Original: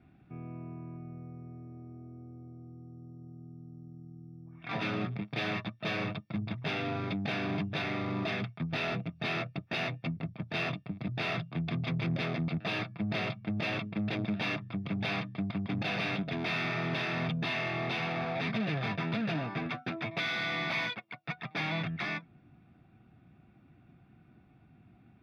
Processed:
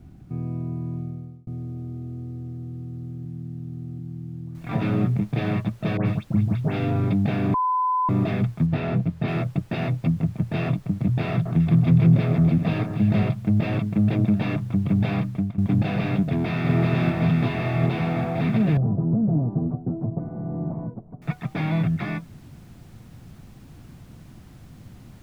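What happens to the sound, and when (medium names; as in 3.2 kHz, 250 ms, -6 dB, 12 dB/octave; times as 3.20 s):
1.00–1.47 s: fade out
3.25–3.99 s: reverse
4.55 s: noise floor step -67 dB -54 dB
5.97–6.91 s: phase dispersion highs, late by 91 ms, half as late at 2.1 kHz
7.54–8.09 s: bleep 1.01 kHz -22.5 dBFS
8.66–9.28 s: treble shelf 4.4 kHz -7.5 dB
11.31–13.23 s: echo whose repeats swap between lows and highs 143 ms, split 1.5 kHz, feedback 59%, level -6 dB
15.17–15.58 s: fade out equal-power, to -18 dB
16.26–16.72 s: echo throw 380 ms, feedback 80%, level -1.5 dB
18.77–21.22 s: Bessel low-pass 540 Hz, order 6
whole clip: tilt EQ -4 dB/octave; trim +3.5 dB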